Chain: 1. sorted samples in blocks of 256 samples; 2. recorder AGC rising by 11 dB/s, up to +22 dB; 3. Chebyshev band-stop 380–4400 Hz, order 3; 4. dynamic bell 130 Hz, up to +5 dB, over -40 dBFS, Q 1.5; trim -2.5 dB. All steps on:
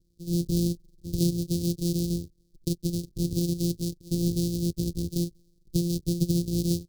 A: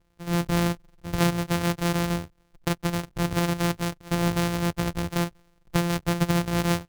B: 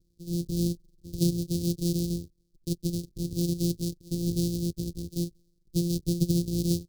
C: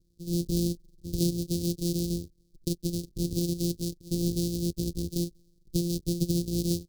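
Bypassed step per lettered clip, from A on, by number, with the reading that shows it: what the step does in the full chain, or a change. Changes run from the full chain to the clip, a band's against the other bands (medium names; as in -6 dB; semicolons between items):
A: 3, 4 kHz band +4.0 dB; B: 2, momentary loudness spread change +2 LU; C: 4, 125 Hz band -3.0 dB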